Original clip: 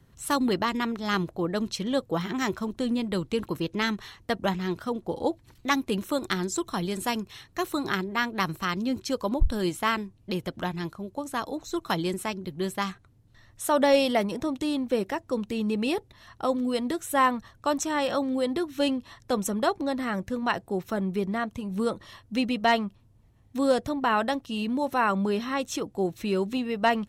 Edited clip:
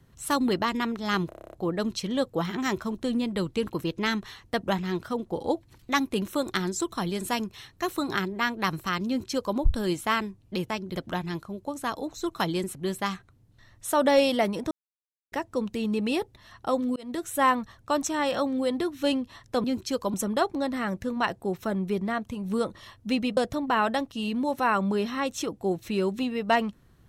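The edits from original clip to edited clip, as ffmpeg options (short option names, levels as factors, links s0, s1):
-filter_complex "[0:a]asplit=18[s0][s1][s2][s3][s4][s5][s6][s7][s8][s9][s10][s11][s12][s13][s14][s15][s16][s17];[s0]atrim=end=1.322[s18];[s1]atrim=start=1.288:end=1.322[s19];[s2]atrim=start=1.288:end=1.322[s20];[s3]atrim=start=1.288:end=1.322[s21];[s4]atrim=start=1.288:end=1.322[s22];[s5]atrim=start=1.288:end=1.322[s23];[s6]atrim=start=1.288:end=1.322[s24];[s7]atrim=start=1.288:end=1.322[s25];[s8]atrim=start=1.288:end=10.462[s26];[s9]atrim=start=12.248:end=12.512[s27];[s10]atrim=start=10.458:end=12.252[s28];[s11]atrim=start=12.508:end=14.47,asetpts=PTS-STARTPTS,afade=t=out:st=1.958:d=0.004:c=hsin[s29];[s12]atrim=start=14.47:end=15.08,asetpts=PTS-STARTPTS,volume=0[s30];[s13]atrim=start=15.08:end=16.72,asetpts=PTS-STARTPTS,afade=t=in:d=0.004:c=hsin,afade=t=out:st=1.636:d=0.004:c=hsin[s31];[s14]atrim=start=16.72:end=19.402,asetpts=PTS-STARTPTS,afade=t=in:d=0.28[s32];[s15]atrim=start=8.828:end=9.332[s33];[s16]atrim=start=19.398:end=22.632[s34];[s17]atrim=start=23.708[s35];[s18][s19]acrossfade=d=0.004:c1=hsin:c2=hsin[s36];[s36][s20]acrossfade=d=0.004:c1=hsin:c2=hsin[s37];[s37][s21]acrossfade=d=0.004:c1=hsin:c2=hsin[s38];[s38][s22]acrossfade=d=0.004:c1=hsin:c2=hsin[s39];[s39][s23]acrossfade=d=0.004:c1=hsin:c2=hsin[s40];[s40][s24]acrossfade=d=0.004:c1=hsin:c2=hsin[s41];[s41][s25]acrossfade=d=0.004:c1=hsin:c2=hsin[s42];[s42][s26]acrossfade=d=0.004:c1=hsin:c2=hsin[s43];[s43][s27]acrossfade=d=0.004:c1=hsin:c2=hsin[s44];[s44][s28]acrossfade=d=0.004:c1=hsin:c2=hsin[s45];[s29][s30][s31][s32]concat=n=4:v=0:a=1[s46];[s45][s46]acrossfade=d=0.004:c1=hsin:c2=hsin[s47];[s47][s33]acrossfade=d=0.004:c1=hsin:c2=hsin[s48];[s48][s34]acrossfade=d=0.004:c1=hsin:c2=hsin[s49];[s49][s35]acrossfade=d=0.004:c1=hsin:c2=hsin"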